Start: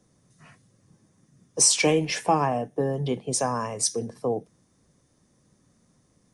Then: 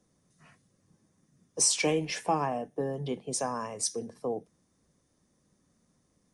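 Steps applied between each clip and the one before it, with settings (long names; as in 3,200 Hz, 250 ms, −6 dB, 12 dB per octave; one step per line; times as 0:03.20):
parametric band 120 Hz −9 dB 0.24 octaves
level −6 dB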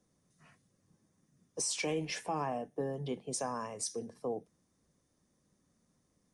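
brickwall limiter −21 dBFS, peak gain reduction 8.5 dB
level −4 dB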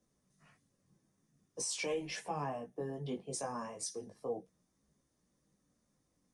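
multi-voice chorus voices 4, 0.38 Hz, delay 18 ms, depth 3.6 ms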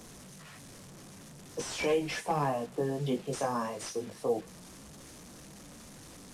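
linear delta modulator 64 kbit/s, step −52.5 dBFS
level +8.5 dB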